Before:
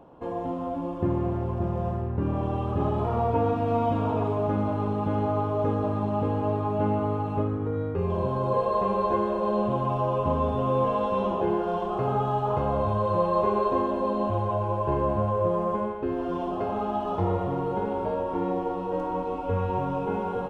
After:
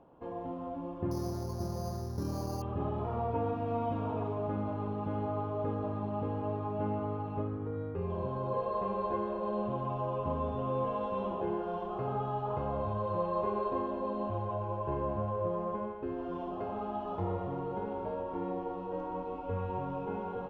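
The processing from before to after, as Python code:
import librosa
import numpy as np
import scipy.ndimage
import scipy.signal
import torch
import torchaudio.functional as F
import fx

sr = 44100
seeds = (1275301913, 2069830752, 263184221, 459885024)

y = scipy.signal.sosfilt(scipy.signal.bessel(2, 3800.0, 'lowpass', norm='mag', fs=sr, output='sos'), x)
y = fx.resample_bad(y, sr, factor=8, down='filtered', up='hold', at=(1.11, 2.62))
y = F.gain(torch.from_numpy(y), -8.5).numpy()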